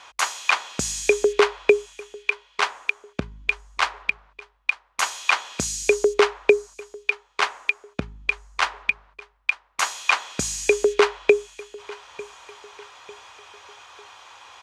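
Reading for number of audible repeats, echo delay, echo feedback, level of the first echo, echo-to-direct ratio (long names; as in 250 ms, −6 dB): 2, 898 ms, 42%, −20.5 dB, −19.5 dB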